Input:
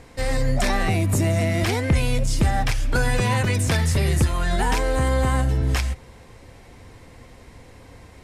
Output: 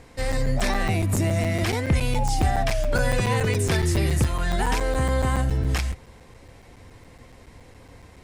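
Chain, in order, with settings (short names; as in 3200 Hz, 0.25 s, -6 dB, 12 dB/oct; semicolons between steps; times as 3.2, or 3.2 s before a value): painted sound fall, 2.15–4.07, 320–880 Hz -28 dBFS; crackling interface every 0.14 s, samples 256, zero, from 0.32; gain -2 dB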